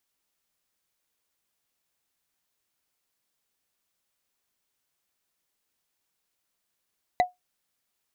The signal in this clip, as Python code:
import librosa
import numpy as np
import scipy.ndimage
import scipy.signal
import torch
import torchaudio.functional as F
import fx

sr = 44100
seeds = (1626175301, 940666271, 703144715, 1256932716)

y = fx.strike_wood(sr, length_s=0.45, level_db=-13.5, body='bar', hz=724.0, decay_s=0.16, tilt_db=7.5, modes=5)